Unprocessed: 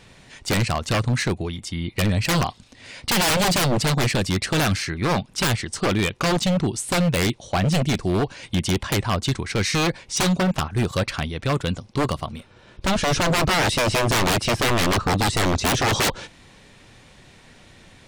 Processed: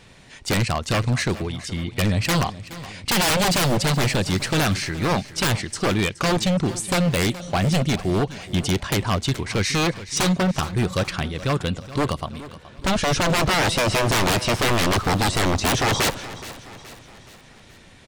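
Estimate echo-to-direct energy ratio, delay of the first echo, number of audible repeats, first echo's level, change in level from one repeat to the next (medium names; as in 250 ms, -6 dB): -15.0 dB, 422 ms, 4, -16.0 dB, -6.0 dB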